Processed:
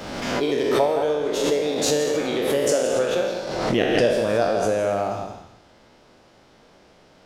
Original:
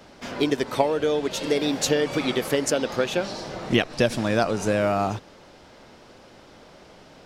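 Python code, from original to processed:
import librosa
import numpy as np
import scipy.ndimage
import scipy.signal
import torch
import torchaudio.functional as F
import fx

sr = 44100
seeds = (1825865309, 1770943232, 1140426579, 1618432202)

p1 = fx.spec_trails(x, sr, decay_s=1.07)
p2 = fx.dynamic_eq(p1, sr, hz=540.0, q=1.1, threshold_db=-34.0, ratio=4.0, max_db=8)
p3 = p2 + fx.echo_single(p2, sr, ms=167, db=-7.0, dry=0)
p4 = fx.pre_swell(p3, sr, db_per_s=36.0)
y = p4 * librosa.db_to_amplitude(-8.0)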